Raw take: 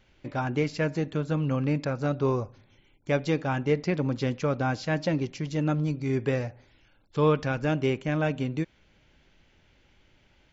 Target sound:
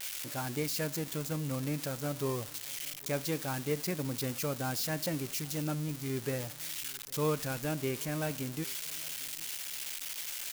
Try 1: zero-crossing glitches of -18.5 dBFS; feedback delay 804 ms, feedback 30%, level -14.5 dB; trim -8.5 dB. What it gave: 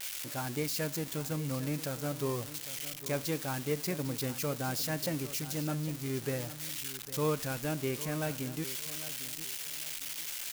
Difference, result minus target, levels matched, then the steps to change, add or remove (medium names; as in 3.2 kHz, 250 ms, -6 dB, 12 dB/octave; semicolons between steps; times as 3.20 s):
echo-to-direct +10 dB
change: feedback delay 804 ms, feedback 30%, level -24.5 dB